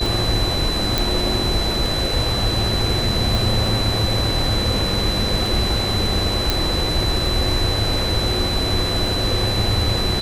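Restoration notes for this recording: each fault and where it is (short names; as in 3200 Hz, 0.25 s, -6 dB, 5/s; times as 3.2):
tick 33 1/3 rpm
tone 4000 Hz -23 dBFS
0.98 pop
3.35 pop
6.5 pop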